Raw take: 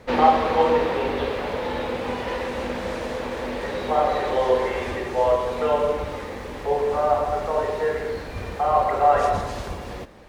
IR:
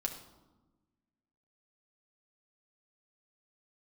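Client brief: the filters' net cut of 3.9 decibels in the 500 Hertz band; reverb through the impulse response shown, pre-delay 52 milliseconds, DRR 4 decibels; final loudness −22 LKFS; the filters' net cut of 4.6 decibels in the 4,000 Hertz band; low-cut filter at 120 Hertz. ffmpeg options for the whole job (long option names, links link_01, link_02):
-filter_complex "[0:a]highpass=120,equalizer=frequency=500:width_type=o:gain=-4.5,equalizer=frequency=4000:width_type=o:gain=-6,asplit=2[link_01][link_02];[1:a]atrim=start_sample=2205,adelay=52[link_03];[link_02][link_03]afir=irnorm=-1:irlink=0,volume=-5.5dB[link_04];[link_01][link_04]amix=inputs=2:normalize=0,volume=2dB"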